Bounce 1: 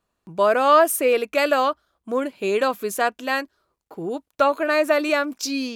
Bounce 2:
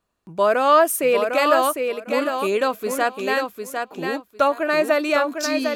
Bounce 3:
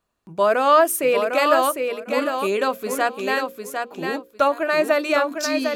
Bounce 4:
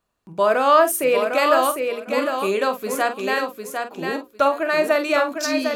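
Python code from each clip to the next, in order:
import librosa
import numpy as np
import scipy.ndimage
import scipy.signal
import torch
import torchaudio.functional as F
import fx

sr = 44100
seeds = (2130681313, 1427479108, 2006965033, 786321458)

y1 = fx.echo_feedback(x, sr, ms=753, feedback_pct=17, wet_db=-5.5)
y2 = fx.hum_notches(y1, sr, base_hz=60, count=9)
y3 = fx.doubler(y2, sr, ms=47.0, db=-10.5)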